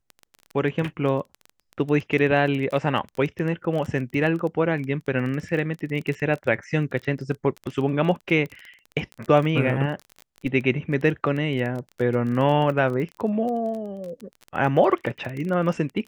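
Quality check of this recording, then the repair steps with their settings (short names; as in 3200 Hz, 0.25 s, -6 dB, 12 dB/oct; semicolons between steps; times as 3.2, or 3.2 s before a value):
crackle 21/s -29 dBFS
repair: de-click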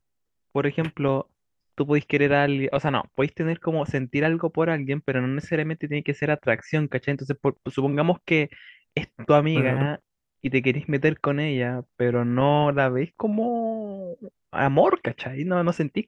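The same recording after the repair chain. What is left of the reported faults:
none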